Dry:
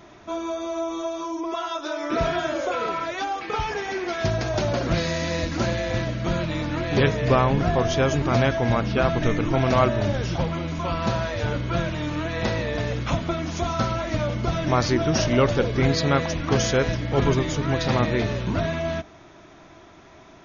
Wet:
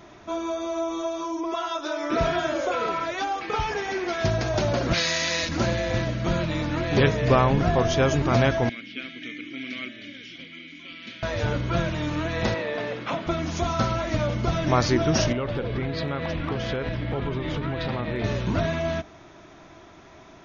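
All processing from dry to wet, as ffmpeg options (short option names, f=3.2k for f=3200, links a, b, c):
-filter_complex "[0:a]asettb=1/sr,asplit=3[a][b][c];[a]atrim=end=4.934[d];[b]atrim=start=4.93:end=5.49,asetpts=PTS-STARTPTS,afade=t=in:d=0.004:c=qsin,afade=t=out:st=0.556:d=0.004:c=qsin,highpass=f=110:p=1,tiltshelf=f=930:g=-8[e];[c]atrim=start=5.486[f];[d][e]acrossfade=d=0.004:c1=hsin:c2=qsin[g];[g][f]acrossfade=d=0.004:c1=qsin:c2=hsin,asettb=1/sr,asplit=3[h][i][j];[h]atrim=end=8.694[k];[i]atrim=start=8.69:end=11.23,asetpts=PTS-STARTPTS,afade=t=in:d=0.004:c=qsin,afade=t=out:st=2.536:d=0.004:c=qsin,asplit=3[l][m][n];[l]bandpass=f=270:t=q:w=8,volume=0dB[o];[m]bandpass=f=2.29k:t=q:w=8,volume=-6dB[p];[n]bandpass=f=3.01k:t=q:w=8,volume=-9dB[q];[o][p][q]amix=inputs=3:normalize=0,tiltshelf=f=670:g=-9.5[r];[j]atrim=start=11.226[s];[k][r]acrossfade=d=0.004:c1=hsin:c2=qsin[t];[t][s]acrossfade=d=0.004:c1=qsin:c2=hsin,asettb=1/sr,asplit=3[u][v][w];[u]atrim=end=12.544[x];[v]atrim=start=12.54:end=13.27,asetpts=PTS-STARTPTS,afade=t=in:d=0.004:c=qsin,afade=t=out:st=0.726:d=0.004:c=qsin,highpass=260,lowpass=3.6k,bandreject=f=50:t=h:w=6,bandreject=f=100:t=h:w=6,bandreject=f=150:t=h:w=6,bandreject=f=200:t=h:w=6,bandreject=f=250:t=h:w=6,bandreject=f=300:t=h:w=6,bandreject=f=350:t=h:w=6[y];[w]atrim=start=13.266[z];[x][y]acrossfade=d=0.004:c1=hsin:c2=qsin[aa];[aa][z]acrossfade=d=0.004:c1=qsin:c2=hsin,asettb=1/sr,asplit=3[ab][ac][ad];[ab]atrim=end=15.324[ae];[ac]atrim=start=15.32:end=18.24,asetpts=PTS-STARTPTS,afade=t=in:d=0.004:c=qsin,afade=t=out:st=2.916:d=0.004:c=qsin,lowpass=f=3.9k:w=0.5412,lowpass=f=3.9k:w=1.3066,acompressor=threshold=-23dB:ratio=12:attack=3.2:release=140:knee=1:detection=peak,asoftclip=type=hard:threshold=-18.5dB[af];[ad]atrim=start=18.236[ag];[ae][af]acrossfade=d=0.004:c1=hsin:c2=qsin[ah];[ah][ag]acrossfade=d=0.004:c1=qsin:c2=hsin"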